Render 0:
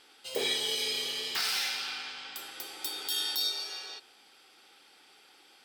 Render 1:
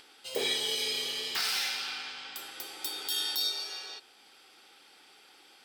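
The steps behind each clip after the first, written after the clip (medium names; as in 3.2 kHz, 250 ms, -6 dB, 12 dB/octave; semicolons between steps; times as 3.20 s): upward compressor, threshold -53 dBFS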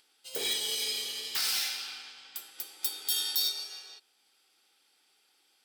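in parallel at -9 dB: integer overflow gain 23 dB; on the sum: treble shelf 4.4 kHz +11.5 dB; upward expansion 1.5:1, over -45 dBFS; trim -6 dB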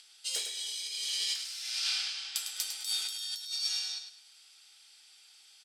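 frequency weighting ITU-R 468; compressor with a negative ratio -31 dBFS, ratio -1; feedback delay 103 ms, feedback 29%, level -8 dB; trim -5.5 dB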